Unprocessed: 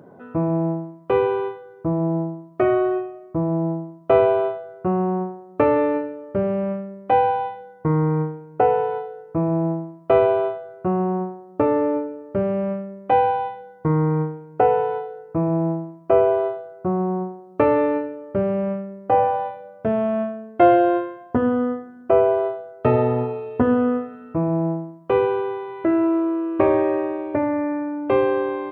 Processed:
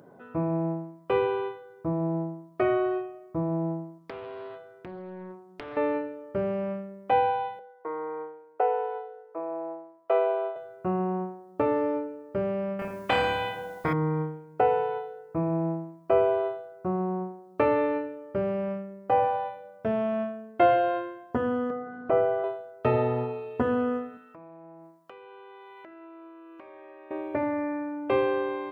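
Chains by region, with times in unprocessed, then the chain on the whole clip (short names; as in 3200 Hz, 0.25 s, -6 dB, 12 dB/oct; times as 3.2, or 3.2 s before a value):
3.98–5.77 bell 640 Hz -8 dB 0.83 oct + compressor 16:1, threshold -29 dBFS + Doppler distortion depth 0.9 ms
7.59–10.56 HPF 430 Hz 24 dB/oct + high shelf 2200 Hz -11.5 dB
12.79–13.93 flutter echo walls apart 4.9 m, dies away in 0.53 s + spectral compressor 2:1
21.7–22.44 LPF 2000 Hz + comb 6.6 ms, depth 67% + upward compressor, threshold -20 dBFS
24.17–27.11 HPF 930 Hz 6 dB/oct + compressor 12:1, threshold -38 dBFS
whole clip: high shelf 2300 Hz +9 dB; notches 50/100/150/200/250/300/350 Hz; gain -6.5 dB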